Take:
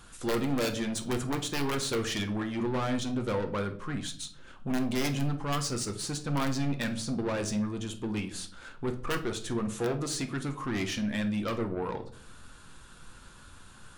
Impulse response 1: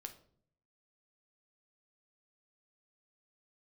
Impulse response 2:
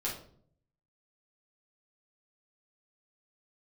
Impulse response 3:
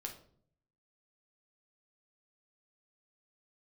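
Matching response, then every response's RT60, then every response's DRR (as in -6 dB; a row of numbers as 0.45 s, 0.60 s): 1; 0.60 s, 0.55 s, 0.60 s; 5.5 dB, -6.5 dB, 1.5 dB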